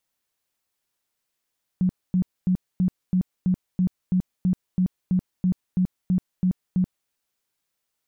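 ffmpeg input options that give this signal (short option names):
-f lavfi -i "aevalsrc='0.141*sin(2*PI*183*mod(t,0.33))*lt(mod(t,0.33),15/183)':d=5.28:s=44100"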